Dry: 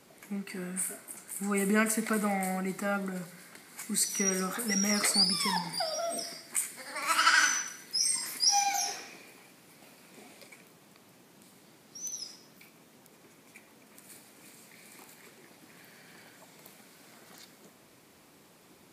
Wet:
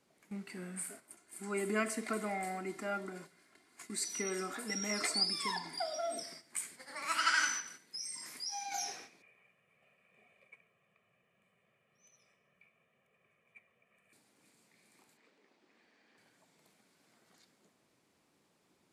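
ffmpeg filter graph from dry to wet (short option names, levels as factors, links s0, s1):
-filter_complex "[0:a]asettb=1/sr,asplit=3[s0][s1][s2];[s0]atrim=end=1.124[s3];[s1]atrim=start=1.12:end=6.19,asetpts=PTS-STARTPTS,afade=t=in:d=0.004:c=qsin,afade=t=out:st=5.066:d=0.004:c=qsin,highshelf=f=9100:g=-6,aecho=1:1:2.9:0.57,atrim=end_sample=223587[s4];[s2]atrim=start=6.186[s5];[s3][s4]acrossfade=d=0.004:c1=hsin:c2=qsin[s6];[s6][s5]acrossfade=d=0.004:c1=qsin:c2=hsin,asettb=1/sr,asplit=3[s7][s8][s9];[s7]atrim=end=7.604[s10];[s8]atrim=start=7.6:end=8.72,asetpts=PTS-STARTPTS,afade=t=in:d=0.004:c=qsin,afade=t=out:st=1.116:d=0.004:c=qsin,highpass=92,acompressor=threshold=0.0141:ratio=2:attack=3.2:release=140:knee=1:detection=peak[s11];[s9]atrim=start=8.716[s12];[s10][s11]acrossfade=d=0.004:c1=hsin:c2=qsin[s13];[s13][s12]acrossfade=d=0.004:c1=qsin:c2=hsin,asettb=1/sr,asplit=3[s14][s15][s16];[s14]atrim=end=9.224[s17];[s15]atrim=start=9.22:end=14.13,asetpts=PTS-STARTPTS,afade=t=in:d=0.004:c=qsin,afade=t=out:st=4.906:d=0.004:c=qsin,highshelf=f=3400:t=q:w=3:g=-10.5,aecho=1:1:1.7:0.87,atrim=end_sample=216531,flanger=delay=0.3:depth=9.4:regen=-73:speed=1:shape=triangular[s18];[s16]atrim=start=14.126[s19];[s17][s18]acrossfade=d=0.004:c1=hsin:c2=qsin[s20];[s20][s19]acrossfade=d=0.004:c1=qsin:c2=hsin,asettb=1/sr,asplit=3[s21][s22][s23];[s21]atrim=end=15.174[s24];[s22]atrim=start=15.17:end=16.18,asetpts=PTS-STARTPTS,afade=t=in:d=0.004:c=qsin,afade=t=out:st=1.006:d=0.004:c=qsin,lowpass=4800,asubboost=boost=10:cutoff=50,afreqshift=55[s25];[s23]atrim=start=16.176[s26];[s24][s25]acrossfade=d=0.004:c1=hsin:c2=qsin[s27];[s27][s26]acrossfade=d=0.004:c1=qsin:c2=hsin,lowpass=10000,agate=range=0.398:threshold=0.00562:ratio=16:detection=peak,volume=0.473"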